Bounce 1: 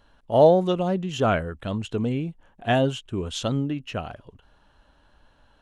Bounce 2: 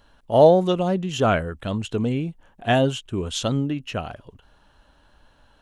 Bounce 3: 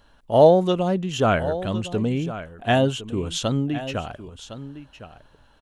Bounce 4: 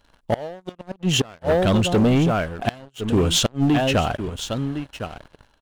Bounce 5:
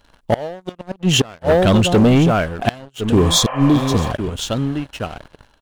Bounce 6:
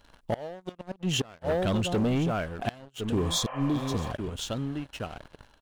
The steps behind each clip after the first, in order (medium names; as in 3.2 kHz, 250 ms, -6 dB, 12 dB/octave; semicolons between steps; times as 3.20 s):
treble shelf 5.2 kHz +4.5 dB; trim +2 dB
delay 1059 ms -13.5 dB
inverted gate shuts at -13 dBFS, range -31 dB; waveshaping leveller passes 3
spectral replace 3.22–4.09 s, 510–3200 Hz before; trim +5 dB
compression 1.5:1, threshold -38 dBFS, peak gain reduction 10 dB; trim -4 dB